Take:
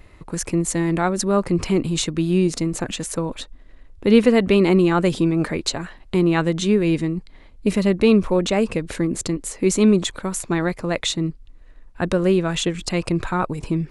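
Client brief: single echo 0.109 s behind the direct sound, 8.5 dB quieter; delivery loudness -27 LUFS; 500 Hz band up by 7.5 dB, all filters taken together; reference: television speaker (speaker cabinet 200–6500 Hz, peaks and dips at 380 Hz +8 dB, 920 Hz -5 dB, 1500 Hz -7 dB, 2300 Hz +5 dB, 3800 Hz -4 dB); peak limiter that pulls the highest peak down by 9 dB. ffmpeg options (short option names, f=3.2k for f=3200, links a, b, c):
-af "equalizer=f=500:t=o:g=3.5,alimiter=limit=-9.5dB:level=0:latency=1,highpass=f=200:w=0.5412,highpass=f=200:w=1.3066,equalizer=f=380:t=q:w=4:g=8,equalizer=f=920:t=q:w=4:g=-5,equalizer=f=1.5k:t=q:w=4:g=-7,equalizer=f=2.3k:t=q:w=4:g=5,equalizer=f=3.8k:t=q:w=4:g=-4,lowpass=f=6.5k:w=0.5412,lowpass=f=6.5k:w=1.3066,aecho=1:1:109:0.376,volume=-9.5dB"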